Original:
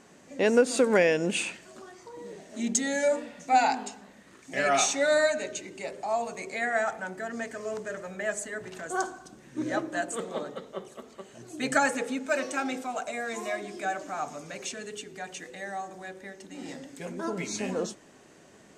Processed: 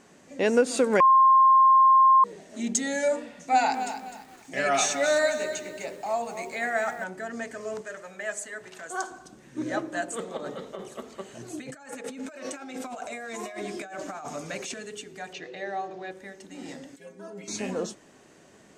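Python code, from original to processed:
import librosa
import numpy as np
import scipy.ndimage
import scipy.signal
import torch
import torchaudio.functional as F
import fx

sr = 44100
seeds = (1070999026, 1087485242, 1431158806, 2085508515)

y = fx.echo_crushed(x, sr, ms=254, feedback_pct=35, bits=8, wet_db=-10.0, at=(3.41, 7.04))
y = fx.low_shelf(y, sr, hz=400.0, db=-11.0, at=(7.81, 9.11))
y = fx.over_compress(y, sr, threshold_db=-38.0, ratio=-1.0, at=(10.37, 14.74))
y = fx.cabinet(y, sr, low_hz=110.0, low_slope=12, high_hz=5200.0, hz=(140.0, 230.0, 390.0, 660.0, 2600.0, 4100.0), db=(9, -8, 9, 7, 4, 4), at=(15.33, 16.11))
y = fx.stiff_resonator(y, sr, f0_hz=96.0, decay_s=0.32, stiffness=0.008, at=(16.96, 17.48))
y = fx.edit(y, sr, fx.bleep(start_s=1.0, length_s=1.24, hz=1060.0, db=-13.5), tone=tone)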